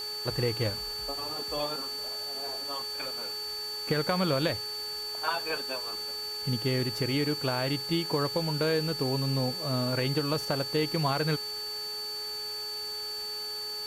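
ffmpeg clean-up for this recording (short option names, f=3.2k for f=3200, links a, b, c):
-af "adeclick=t=4,bandreject=f=423.1:t=h:w=4,bandreject=f=846.2:t=h:w=4,bandreject=f=1.2693k:t=h:w=4,bandreject=f=1.6924k:t=h:w=4,bandreject=f=4.5k:w=30,afwtdn=0.005"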